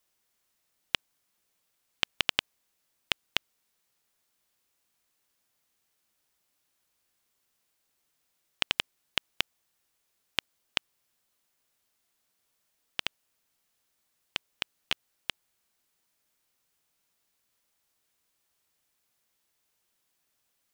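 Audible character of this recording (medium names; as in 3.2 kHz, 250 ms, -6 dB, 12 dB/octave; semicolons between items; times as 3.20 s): noise floor -77 dBFS; spectral tilt -2.5 dB/octave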